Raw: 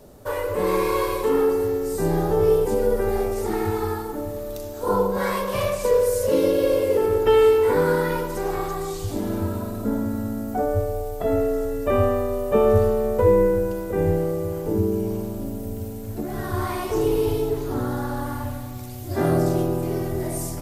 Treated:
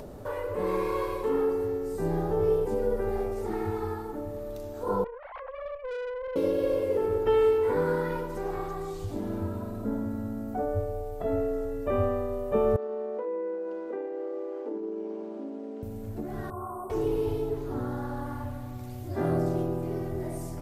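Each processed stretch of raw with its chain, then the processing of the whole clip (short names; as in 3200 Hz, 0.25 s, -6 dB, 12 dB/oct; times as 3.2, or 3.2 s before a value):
5.04–6.36 sine-wave speech + tube stage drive 27 dB, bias 0.75 + Doppler distortion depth 0.18 ms
12.76–15.83 compressor, threshold -21 dBFS + brick-wall FIR high-pass 220 Hz + air absorption 150 m
16.5–16.9 Chebyshev band-stop 1300–8200 Hz, order 5 + low shelf 230 Hz -11.5 dB + notch comb 310 Hz
whole clip: upward compressor, threshold -25 dBFS; high shelf 3200 Hz -10.5 dB; gain -6.5 dB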